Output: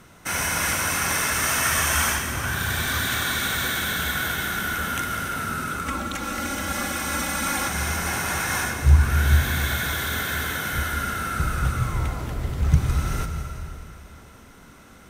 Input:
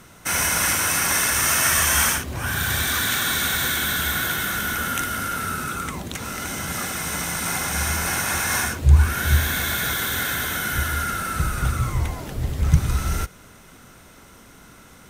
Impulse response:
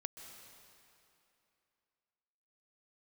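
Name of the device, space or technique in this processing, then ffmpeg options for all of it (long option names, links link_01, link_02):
swimming-pool hall: -filter_complex "[1:a]atrim=start_sample=2205[link_01];[0:a][link_01]afir=irnorm=-1:irlink=0,highshelf=frequency=4600:gain=-5,asettb=1/sr,asplit=3[link_02][link_03][link_04];[link_02]atrim=end=5.864[link_05];[link_03]atrim=start=5.86:end=7.68,asetpts=PTS-STARTPTS,afade=type=in:duration=0.004:curve=qsin,afade=type=out:start_time=1.816:duration=0.004:curve=qsin,aecho=1:1:3.6:0.95,atrim=end_sample=80262[link_06];[link_04]atrim=start=7.676[link_07];[link_05][link_06]acrossfade=duration=0.004:curve1=hsin:curve2=qsin[link_08];[link_08][link_07]acrossfade=duration=0.004:curve1=qsin:curve2=hsin,volume=2dB"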